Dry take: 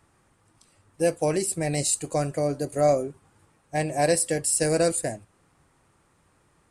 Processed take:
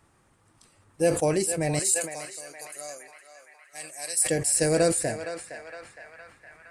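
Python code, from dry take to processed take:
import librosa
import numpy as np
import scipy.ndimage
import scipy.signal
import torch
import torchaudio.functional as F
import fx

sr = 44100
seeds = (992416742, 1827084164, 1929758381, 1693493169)

y = fx.differentiator(x, sr, at=(1.79, 4.25))
y = fx.echo_banded(y, sr, ms=463, feedback_pct=73, hz=1600.0, wet_db=-6.5)
y = fx.sustainer(y, sr, db_per_s=98.0)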